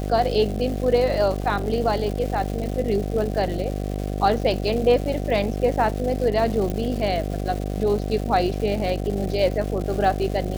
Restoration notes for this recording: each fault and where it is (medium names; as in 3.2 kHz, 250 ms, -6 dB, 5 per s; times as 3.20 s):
buzz 50 Hz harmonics 15 -27 dBFS
crackle 430 per s -30 dBFS
1.42 s: dropout 2.4 ms
6.70 s: pop -15 dBFS